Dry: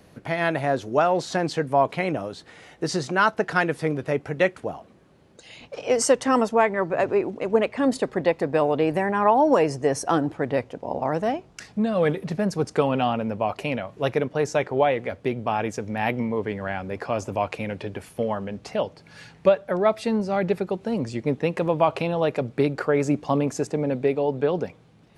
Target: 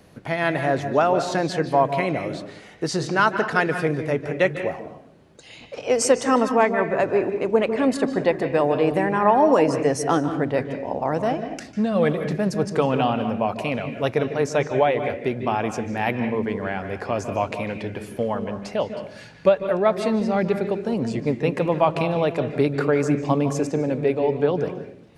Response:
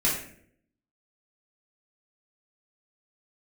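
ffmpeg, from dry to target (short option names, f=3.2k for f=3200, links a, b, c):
-filter_complex "[0:a]asplit=2[a][b];[1:a]atrim=start_sample=2205,lowpass=5.5k,adelay=145[c];[b][c]afir=irnorm=-1:irlink=0,volume=-19dB[d];[a][d]amix=inputs=2:normalize=0,volume=1dB"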